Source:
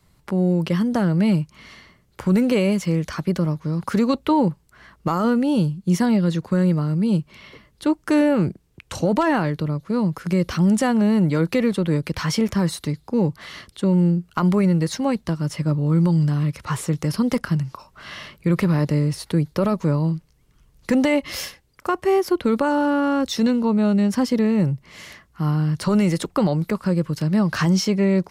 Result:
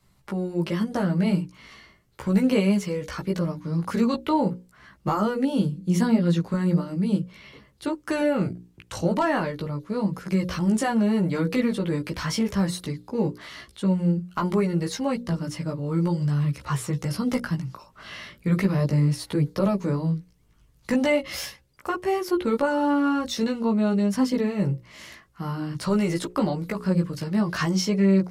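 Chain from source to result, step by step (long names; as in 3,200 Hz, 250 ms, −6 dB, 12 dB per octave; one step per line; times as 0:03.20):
mains-hum notches 60/120/180/240/300/360/420/480/540 Hz
multi-voice chorus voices 2, 0.39 Hz, delay 16 ms, depth 1.6 ms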